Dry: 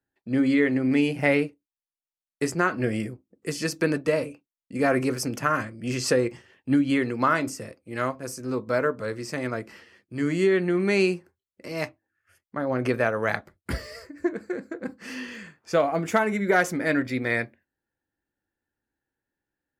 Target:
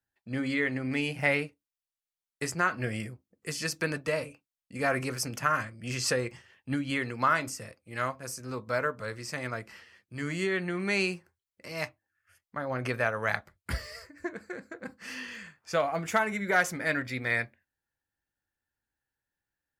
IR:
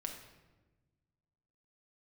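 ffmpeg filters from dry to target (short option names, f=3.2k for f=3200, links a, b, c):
-af "equalizer=f=320:w=0.8:g=-10.5,volume=-1dB"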